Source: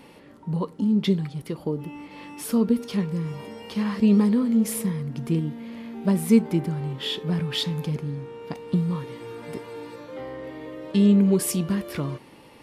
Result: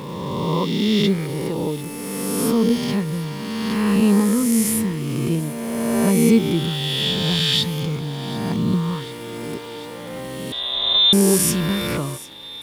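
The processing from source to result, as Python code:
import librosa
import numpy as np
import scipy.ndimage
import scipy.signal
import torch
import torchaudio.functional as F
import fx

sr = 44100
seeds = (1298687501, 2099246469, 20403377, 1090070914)

p1 = fx.spec_swells(x, sr, rise_s=2.42)
p2 = fx.low_shelf(p1, sr, hz=130.0, db=6.5)
p3 = fx.quant_dither(p2, sr, seeds[0], bits=6, dither='none')
p4 = p2 + F.gain(torch.from_numpy(p3), -10.0).numpy()
p5 = fx.low_shelf(p4, sr, hz=410.0, db=-5.5)
p6 = fx.freq_invert(p5, sr, carrier_hz=3800, at=(10.52, 11.13))
p7 = p6 + fx.echo_wet_highpass(p6, sr, ms=743, feedback_pct=70, hz=2100.0, wet_db=-17.5, dry=0)
y = F.gain(torch.from_numpy(p7), 1.0).numpy()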